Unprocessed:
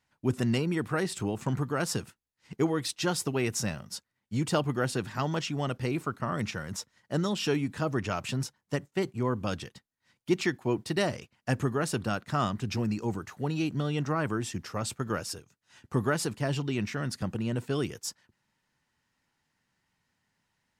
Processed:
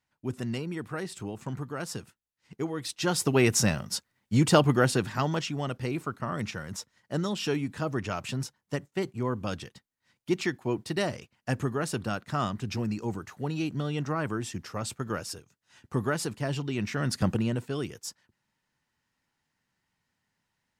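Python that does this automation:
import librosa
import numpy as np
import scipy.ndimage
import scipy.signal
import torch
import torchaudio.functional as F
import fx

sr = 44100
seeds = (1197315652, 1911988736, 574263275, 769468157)

y = fx.gain(x, sr, db=fx.line((2.71, -5.5), (3.38, 7.0), (4.72, 7.0), (5.62, -1.0), (16.73, -1.0), (17.29, 7.5), (17.68, -2.5)))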